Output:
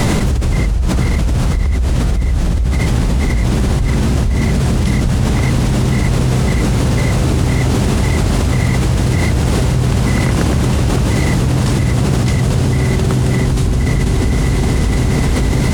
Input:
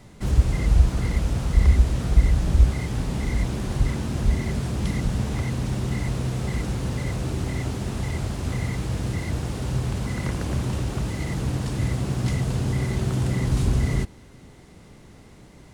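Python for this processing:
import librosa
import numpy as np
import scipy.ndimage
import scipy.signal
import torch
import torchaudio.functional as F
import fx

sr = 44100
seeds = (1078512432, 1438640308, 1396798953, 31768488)

y = fx.echo_diffused(x, sr, ms=494, feedback_pct=68, wet_db=-13)
y = fx.env_flatten(y, sr, amount_pct=100)
y = y * 10.0 ** (-3.5 / 20.0)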